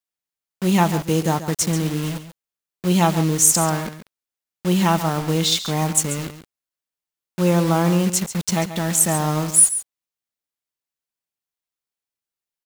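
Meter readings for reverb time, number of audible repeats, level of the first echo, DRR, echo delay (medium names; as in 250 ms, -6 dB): no reverb, 1, -12.0 dB, no reverb, 138 ms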